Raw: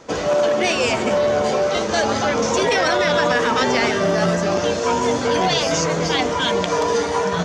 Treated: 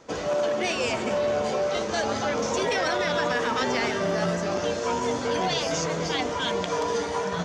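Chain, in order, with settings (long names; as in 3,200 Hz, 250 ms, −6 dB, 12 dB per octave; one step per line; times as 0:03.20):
0:02.36–0:03.94: surface crackle 140 per second −40 dBFS
on a send: convolution reverb RT60 5.2 s, pre-delay 190 ms, DRR 14.5 dB
on the sum: level −7.5 dB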